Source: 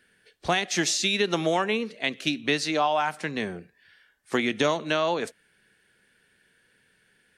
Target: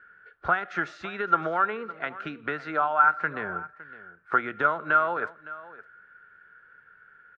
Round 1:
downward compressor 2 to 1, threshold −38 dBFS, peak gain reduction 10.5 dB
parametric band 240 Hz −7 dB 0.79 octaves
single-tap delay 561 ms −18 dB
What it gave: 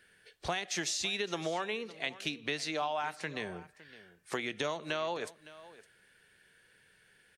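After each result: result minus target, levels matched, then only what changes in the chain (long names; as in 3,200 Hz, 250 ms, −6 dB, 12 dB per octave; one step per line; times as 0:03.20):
1,000 Hz band −5.0 dB; downward compressor: peak gain reduction +3 dB
add after downward compressor: low-pass with resonance 1,400 Hz, resonance Q 16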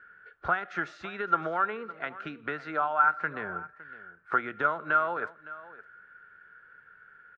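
downward compressor: peak gain reduction +3 dB
change: downward compressor 2 to 1, threshold −31.5 dBFS, peak gain reduction 7.5 dB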